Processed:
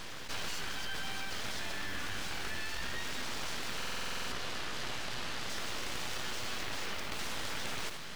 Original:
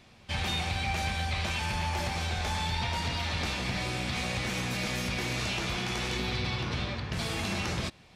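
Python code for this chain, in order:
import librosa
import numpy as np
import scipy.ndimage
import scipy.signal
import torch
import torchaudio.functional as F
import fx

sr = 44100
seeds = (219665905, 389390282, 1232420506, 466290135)

y = fx.mod_noise(x, sr, seeds[0], snr_db=20)
y = scipy.signal.sosfilt(scipy.signal.butter(2, 650.0, 'highpass', fs=sr, output='sos'), y)
y = fx.high_shelf(y, sr, hz=2100.0, db=-12.0)
y = fx.rider(y, sr, range_db=10, speed_s=0.5)
y = fx.air_absorb(y, sr, metres=120.0, at=(4.32, 5.5))
y = y + 10.0 ** (-18.5 / 20.0) * np.pad(y, (int(78 * sr / 1000.0), 0))[:len(y)]
y = np.abs(y)
y = fx.buffer_glitch(y, sr, at_s=(3.77,), block=2048, repeats=10)
y = fx.env_flatten(y, sr, amount_pct=70)
y = F.gain(torch.from_numpy(y), 2.5).numpy()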